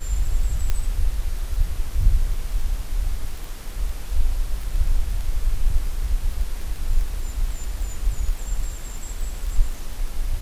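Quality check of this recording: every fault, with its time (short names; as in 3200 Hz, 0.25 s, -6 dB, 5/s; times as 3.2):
crackle 16/s -28 dBFS
0.7 pop -10 dBFS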